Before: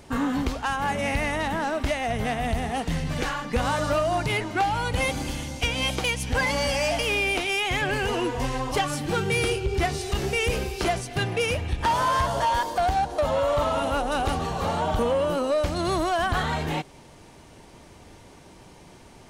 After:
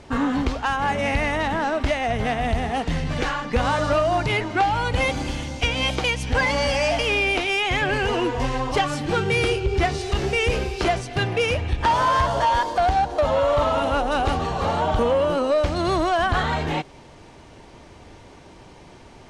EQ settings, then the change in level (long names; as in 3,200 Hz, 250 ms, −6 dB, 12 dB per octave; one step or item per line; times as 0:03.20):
high-frequency loss of the air 69 metres
parametric band 180 Hz −3 dB 0.77 octaves
+4.0 dB